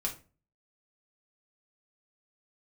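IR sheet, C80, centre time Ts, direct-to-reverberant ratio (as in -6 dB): 18.0 dB, 14 ms, -1.5 dB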